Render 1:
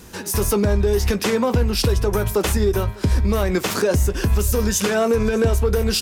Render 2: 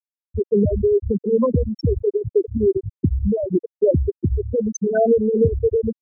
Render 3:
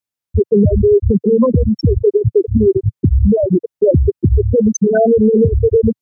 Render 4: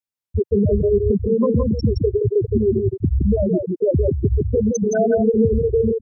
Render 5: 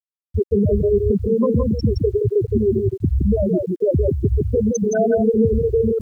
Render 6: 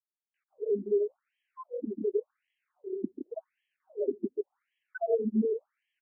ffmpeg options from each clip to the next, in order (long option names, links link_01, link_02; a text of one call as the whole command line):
ffmpeg -i in.wav -af "highpass=89,afftfilt=real='re*gte(hypot(re,im),0.631)':imag='im*gte(hypot(re,im),0.631)':win_size=1024:overlap=0.75,volume=3.5dB" out.wav
ffmpeg -i in.wav -af "equalizer=frequency=120:width_type=o:width=1.3:gain=7,alimiter=limit=-13dB:level=0:latency=1:release=130,volume=8.5dB" out.wav
ffmpeg -i in.wav -af "aecho=1:1:168:0.596,volume=-6.5dB" out.wav
ffmpeg -i in.wav -af "areverse,acompressor=mode=upward:threshold=-18dB:ratio=2.5,areverse,acrusher=bits=9:mix=0:aa=0.000001" out.wav
ffmpeg -i in.wav -af "aecho=1:1:141:0.376,afftfilt=real='re*between(b*sr/1024,270*pow(2400/270,0.5+0.5*sin(2*PI*0.89*pts/sr))/1.41,270*pow(2400/270,0.5+0.5*sin(2*PI*0.89*pts/sr))*1.41)':imag='im*between(b*sr/1024,270*pow(2400/270,0.5+0.5*sin(2*PI*0.89*pts/sr))/1.41,270*pow(2400/270,0.5+0.5*sin(2*PI*0.89*pts/sr))*1.41)':win_size=1024:overlap=0.75,volume=-8.5dB" out.wav